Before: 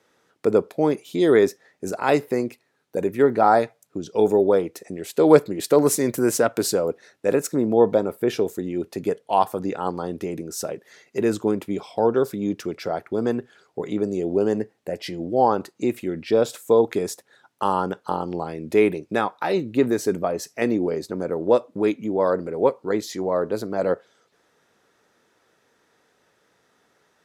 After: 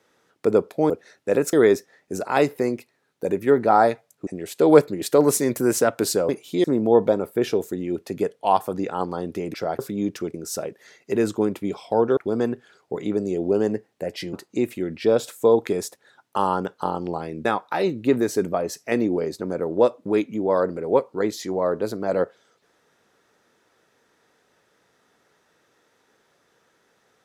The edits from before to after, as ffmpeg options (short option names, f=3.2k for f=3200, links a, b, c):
-filter_complex "[0:a]asplit=12[a][b][c][d][e][f][g][h][i][j][k][l];[a]atrim=end=0.902[m];[b]atrim=start=6.868:end=7.502[n];[c]atrim=start=1.248:end=3.992[o];[d]atrim=start=4.848:end=6.872[p];[e]atrim=start=0.898:end=1.252[q];[f]atrim=start=7.498:end=10.402[r];[g]atrim=start=12.778:end=13.032[s];[h]atrim=start=12.228:end=12.782[t];[i]atrim=start=10.398:end=12.232[u];[j]atrim=start=13.028:end=15.192[v];[k]atrim=start=15.588:end=18.712[w];[l]atrim=start=19.148[x];[m][n]acrossfade=d=0.004:c1=hsin:c2=hsin[y];[y][o]acrossfade=d=0.004:c1=hsin:c2=hsin[z];[z][p]acrossfade=d=0.004:c1=hsin:c2=hsin[aa];[aa][q]acrossfade=d=0.004:c1=hsin:c2=hsin[ab];[ab][r]acrossfade=d=0.004:c1=hsin:c2=hsin[ac];[ac][s]acrossfade=d=0.004:c1=hsin:c2=hsin[ad];[ad][t]acrossfade=d=0.004:c1=hsin:c2=hsin[ae];[ae][u]acrossfade=d=0.004:c1=hsin:c2=hsin[af];[af][v]acrossfade=d=0.004:c1=hsin:c2=hsin[ag];[ag][w]acrossfade=d=0.004:c1=hsin:c2=hsin[ah];[ah][x]acrossfade=d=0.004:c1=hsin:c2=hsin"